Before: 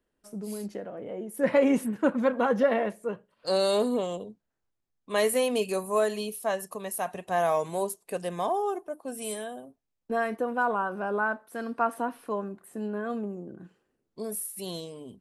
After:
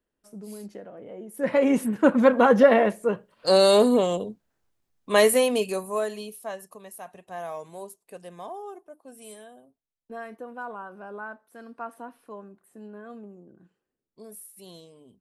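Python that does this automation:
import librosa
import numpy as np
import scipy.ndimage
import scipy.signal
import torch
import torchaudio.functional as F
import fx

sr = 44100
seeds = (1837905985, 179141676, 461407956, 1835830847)

y = fx.gain(x, sr, db=fx.line((1.18, -4.0), (2.2, 7.5), (5.17, 7.5), (5.95, -2.0), (7.0, -10.0)))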